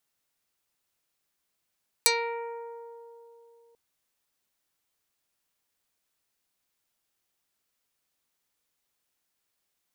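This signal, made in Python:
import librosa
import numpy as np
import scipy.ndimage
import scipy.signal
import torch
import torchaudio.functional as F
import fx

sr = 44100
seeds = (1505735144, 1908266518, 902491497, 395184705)

y = fx.pluck(sr, length_s=1.69, note=70, decay_s=3.31, pick=0.27, brightness='dark')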